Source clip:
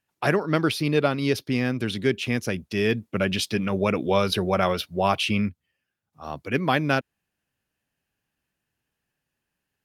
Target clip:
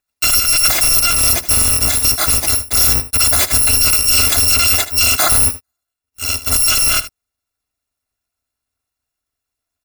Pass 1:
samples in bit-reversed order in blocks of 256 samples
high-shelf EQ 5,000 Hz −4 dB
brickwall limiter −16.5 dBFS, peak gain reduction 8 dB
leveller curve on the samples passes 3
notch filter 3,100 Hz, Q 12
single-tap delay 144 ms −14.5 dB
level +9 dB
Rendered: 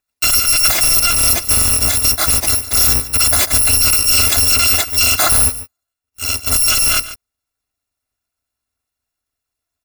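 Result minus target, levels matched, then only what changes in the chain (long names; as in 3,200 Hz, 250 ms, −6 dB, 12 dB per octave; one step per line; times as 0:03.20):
echo 67 ms late
change: single-tap delay 77 ms −14.5 dB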